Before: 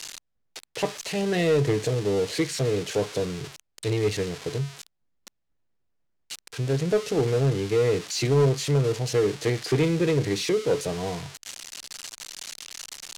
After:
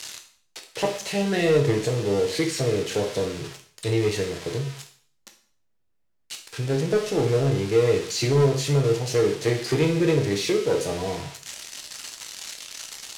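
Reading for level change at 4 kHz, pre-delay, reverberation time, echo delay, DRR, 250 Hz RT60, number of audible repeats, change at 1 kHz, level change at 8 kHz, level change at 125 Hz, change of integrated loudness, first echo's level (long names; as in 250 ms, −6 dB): +2.0 dB, 7 ms, 0.50 s, no echo audible, 2.5 dB, 0.50 s, no echo audible, +2.0 dB, +1.5 dB, +1.0 dB, +1.5 dB, no echo audible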